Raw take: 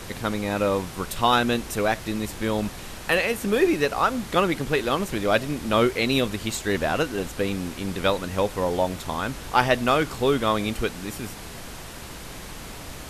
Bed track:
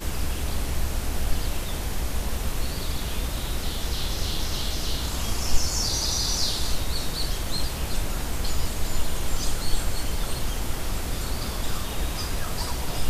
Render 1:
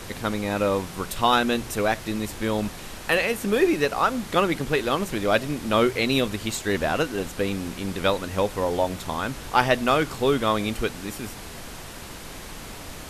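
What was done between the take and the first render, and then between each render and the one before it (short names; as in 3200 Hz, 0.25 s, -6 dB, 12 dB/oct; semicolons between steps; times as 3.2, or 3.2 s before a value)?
de-hum 60 Hz, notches 3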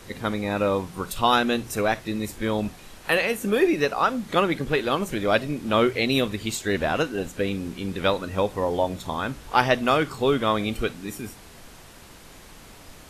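noise print and reduce 8 dB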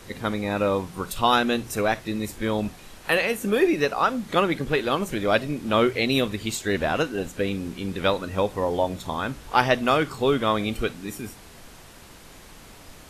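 nothing audible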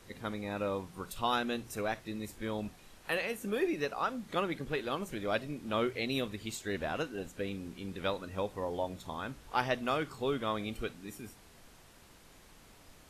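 gain -11.5 dB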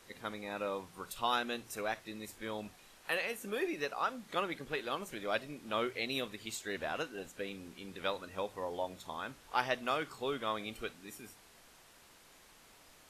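low shelf 330 Hz -10.5 dB; notches 50/100 Hz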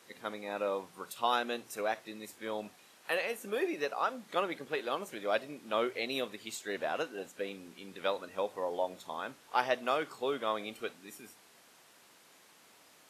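HPF 170 Hz 12 dB/oct; dynamic EQ 590 Hz, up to +5 dB, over -47 dBFS, Q 0.92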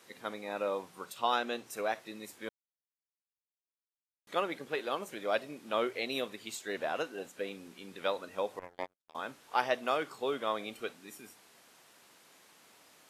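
1.05–1.7 bell 11000 Hz -8.5 dB 0.33 oct; 2.49–4.27 mute; 8.59–9.15 power-law curve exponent 3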